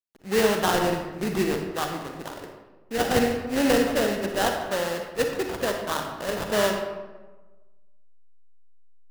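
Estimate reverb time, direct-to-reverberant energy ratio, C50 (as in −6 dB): 1.2 s, 3.0 dB, 4.5 dB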